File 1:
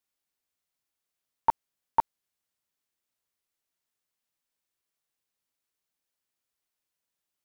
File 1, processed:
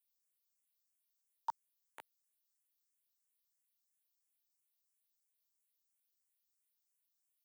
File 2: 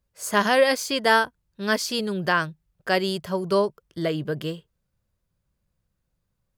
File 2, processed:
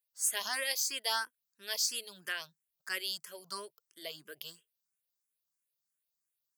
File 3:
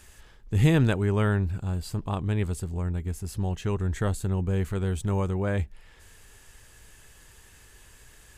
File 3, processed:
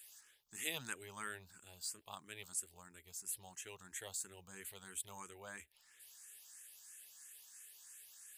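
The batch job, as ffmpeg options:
-filter_complex "[0:a]aderivative,asplit=2[link_01][link_02];[link_02]afreqshift=3[link_03];[link_01][link_03]amix=inputs=2:normalize=1,volume=2dB"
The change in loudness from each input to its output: −15.5, −11.0, −19.5 LU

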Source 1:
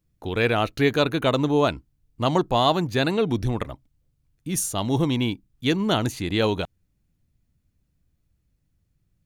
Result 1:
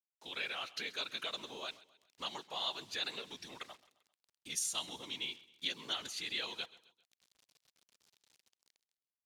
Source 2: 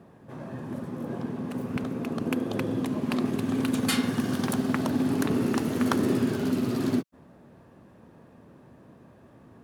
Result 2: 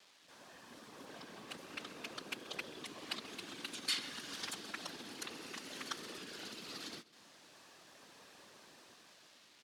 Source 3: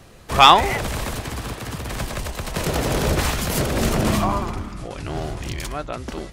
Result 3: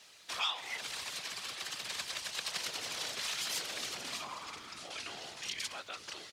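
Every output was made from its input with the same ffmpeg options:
-filter_complex "[0:a]dynaudnorm=framelen=380:gausssize=7:maxgain=15dB,afftfilt=real='hypot(re,im)*cos(2*PI*random(0))':imag='hypot(re,im)*sin(2*PI*random(1))':win_size=512:overlap=0.75,acompressor=threshold=-31dB:ratio=5,acrusher=bits=9:mix=0:aa=0.000001,bandpass=frequency=4300:width_type=q:width=1.1:csg=0,asplit=2[link_01][link_02];[link_02]aecho=0:1:132|264|396:0.106|0.0466|0.0205[link_03];[link_01][link_03]amix=inputs=2:normalize=0,volume=5dB"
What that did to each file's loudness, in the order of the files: −16.0, −16.0, −17.0 LU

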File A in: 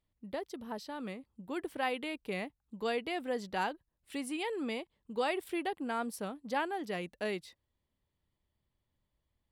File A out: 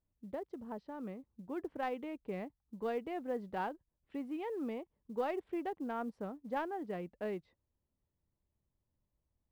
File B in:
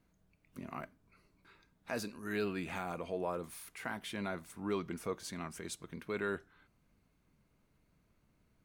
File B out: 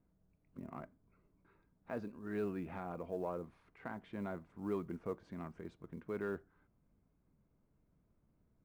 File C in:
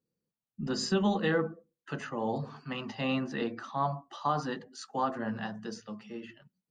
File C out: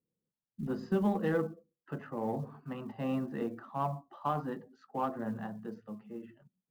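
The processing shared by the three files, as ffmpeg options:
-af "adynamicsmooth=sensitivity=0.5:basefreq=1200,acrusher=bits=9:mode=log:mix=0:aa=0.000001,volume=-1.5dB"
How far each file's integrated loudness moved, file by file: −3.5, −3.5, −3.0 LU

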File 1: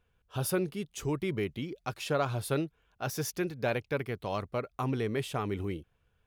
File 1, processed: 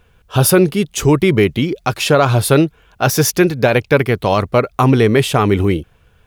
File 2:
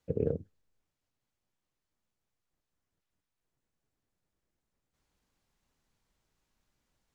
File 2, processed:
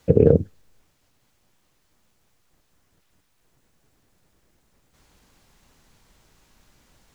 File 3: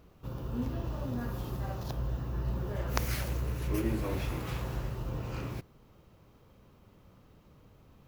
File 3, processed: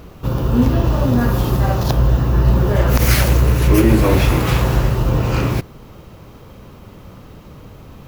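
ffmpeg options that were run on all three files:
-af "alimiter=level_in=21dB:limit=-1dB:release=50:level=0:latency=1,volume=-1dB"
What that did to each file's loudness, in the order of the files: +19.5, +15.5, +19.5 LU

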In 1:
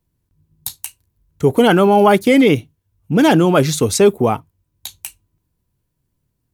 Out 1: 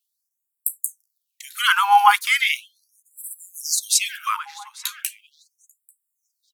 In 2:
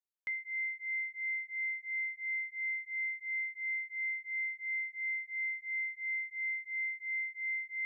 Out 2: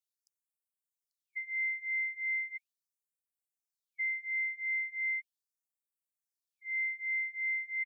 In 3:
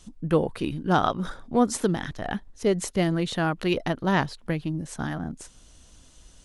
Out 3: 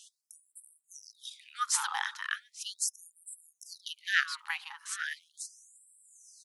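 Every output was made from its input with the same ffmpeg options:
-filter_complex "[0:a]asplit=2[link_01][link_02];[link_02]adelay=841,lowpass=frequency=2500:poles=1,volume=-14dB,asplit=2[link_03][link_04];[link_04]adelay=841,lowpass=frequency=2500:poles=1,volume=0.48,asplit=2[link_05][link_06];[link_06]adelay=841,lowpass=frequency=2500:poles=1,volume=0.48,asplit=2[link_07][link_08];[link_08]adelay=841,lowpass=frequency=2500:poles=1,volume=0.48,asplit=2[link_09][link_10];[link_10]adelay=841,lowpass=frequency=2500:poles=1,volume=0.48[link_11];[link_01][link_03][link_05][link_07][link_09][link_11]amix=inputs=6:normalize=0,afftfilt=real='re*gte(b*sr/1024,770*pow(7600/770,0.5+0.5*sin(2*PI*0.38*pts/sr)))':imag='im*gte(b*sr/1024,770*pow(7600/770,0.5+0.5*sin(2*PI*0.38*pts/sr)))':win_size=1024:overlap=0.75,volume=3dB"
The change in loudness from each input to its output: −6.5, +2.0, −7.5 LU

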